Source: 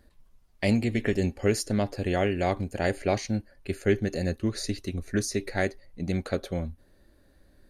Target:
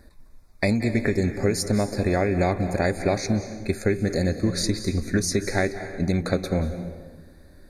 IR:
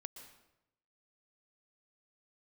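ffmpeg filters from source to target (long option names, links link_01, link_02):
-filter_complex "[0:a]acompressor=threshold=-27dB:ratio=6,asuperstop=centerf=3000:order=20:qfactor=3.2,asplit=2[link_01][link_02];[1:a]atrim=start_sample=2205,asetrate=28665,aresample=44100[link_03];[link_02][link_03]afir=irnorm=-1:irlink=0,volume=7.5dB[link_04];[link_01][link_04]amix=inputs=2:normalize=0"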